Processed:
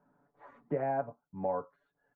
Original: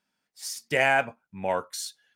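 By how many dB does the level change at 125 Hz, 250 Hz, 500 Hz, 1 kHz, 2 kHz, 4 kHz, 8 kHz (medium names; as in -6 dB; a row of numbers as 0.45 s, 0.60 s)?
-3.0 dB, -2.5 dB, -6.0 dB, -8.0 dB, -25.0 dB, under -40 dB, under -40 dB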